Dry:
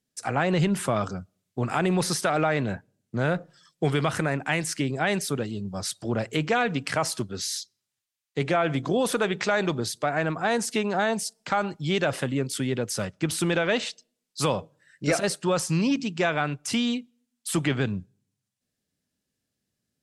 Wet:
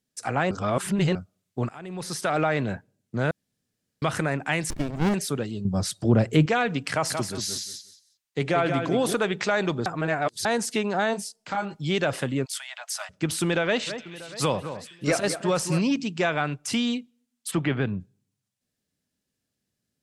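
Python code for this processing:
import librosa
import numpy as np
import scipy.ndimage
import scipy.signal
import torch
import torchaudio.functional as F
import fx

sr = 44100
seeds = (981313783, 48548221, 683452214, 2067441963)

y = fx.running_max(x, sr, window=65, at=(4.7, 5.14))
y = fx.low_shelf(y, sr, hz=440.0, db=11.0, at=(5.65, 6.46))
y = fx.echo_feedback(y, sr, ms=180, feedback_pct=20, wet_db=-6, at=(7.09, 9.13), fade=0.02)
y = fx.detune_double(y, sr, cents=fx.line((11.13, 29.0), (11.73, 13.0)), at=(11.13, 11.73), fade=0.02)
y = fx.steep_highpass(y, sr, hz=640.0, slope=96, at=(12.44, 13.09), fade=0.02)
y = fx.echo_alternate(y, sr, ms=213, hz=2300.0, feedback_pct=66, wet_db=-10.0, at=(13.86, 15.79), fade=0.02)
y = fx.lowpass(y, sr, hz=2800.0, slope=12, at=(17.5, 17.99), fade=0.02)
y = fx.edit(y, sr, fx.reverse_span(start_s=0.51, length_s=0.64),
    fx.fade_in_from(start_s=1.69, length_s=0.64, curve='qua', floor_db=-18.0),
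    fx.room_tone_fill(start_s=3.31, length_s=0.71),
    fx.reverse_span(start_s=9.86, length_s=0.59), tone=tone)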